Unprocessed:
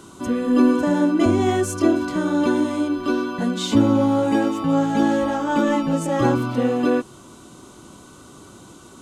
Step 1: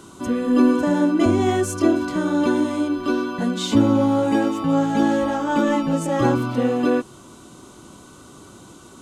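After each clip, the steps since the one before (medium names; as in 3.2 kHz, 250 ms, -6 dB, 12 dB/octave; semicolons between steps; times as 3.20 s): no audible change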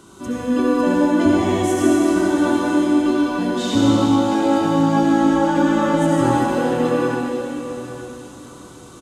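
delay 860 ms -15.5 dB; reverberation RT60 3.3 s, pre-delay 58 ms, DRR -4.5 dB; trim -3 dB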